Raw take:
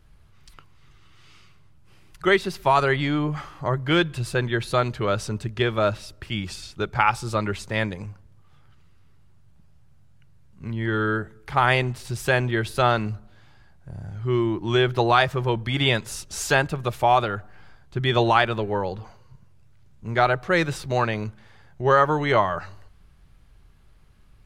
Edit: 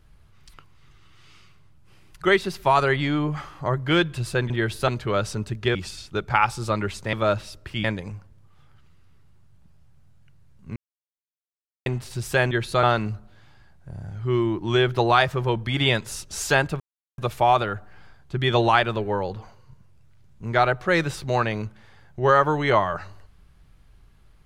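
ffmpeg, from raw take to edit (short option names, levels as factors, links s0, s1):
-filter_complex "[0:a]asplit=11[s0][s1][s2][s3][s4][s5][s6][s7][s8][s9][s10];[s0]atrim=end=4.502[s11];[s1]atrim=start=12.448:end=12.832[s12];[s2]atrim=start=4.818:end=5.692[s13];[s3]atrim=start=6.398:end=7.782[s14];[s4]atrim=start=5.688:end=6.402[s15];[s5]atrim=start=7.778:end=10.7,asetpts=PTS-STARTPTS,afade=t=out:st=2.918:d=0.004:c=hsin[s16];[s6]atrim=start=10.7:end=11.8,asetpts=PTS-STARTPTS,volume=0[s17];[s7]atrim=start=11.8:end=12.452,asetpts=PTS-STARTPTS,afade=t=in:d=0.004:c=hsin[s18];[s8]atrim=start=4.498:end=4.822[s19];[s9]atrim=start=12.828:end=16.8,asetpts=PTS-STARTPTS,afade=t=out:st=3.968:d=0.004:c=hsin,apad=pad_dur=0.38[s20];[s10]atrim=start=16.8,asetpts=PTS-STARTPTS,afade=t=in:d=0.004:c=hsin[s21];[s11][s12]acrossfade=d=0.004:c1=hsin:c2=hsin[s22];[s22][s13]acrossfade=d=0.004:c1=hsin:c2=hsin[s23];[s23][s14]acrossfade=d=0.004:c1=hsin:c2=hsin[s24];[s24][s15]acrossfade=d=0.004:c1=hsin:c2=hsin[s25];[s16][s17][s18]concat=n=3:v=0:a=1[s26];[s25][s26]acrossfade=d=0.004:c1=hsin:c2=hsin[s27];[s27][s19]acrossfade=d=0.004:c1=hsin:c2=hsin[s28];[s20][s21]concat=n=2:v=0:a=1[s29];[s28][s29]acrossfade=d=0.004:c1=hsin:c2=hsin"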